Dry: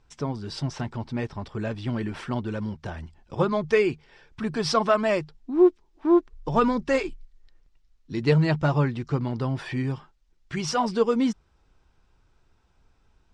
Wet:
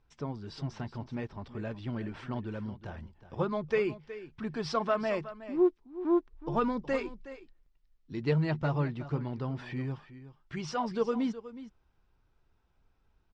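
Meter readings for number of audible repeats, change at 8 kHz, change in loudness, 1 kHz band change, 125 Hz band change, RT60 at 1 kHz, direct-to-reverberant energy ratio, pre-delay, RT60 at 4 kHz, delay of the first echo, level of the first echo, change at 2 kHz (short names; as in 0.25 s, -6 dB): 1, under -10 dB, -8.0 dB, -8.0 dB, -7.5 dB, none, none, none, none, 0.368 s, -14.5 dB, -8.5 dB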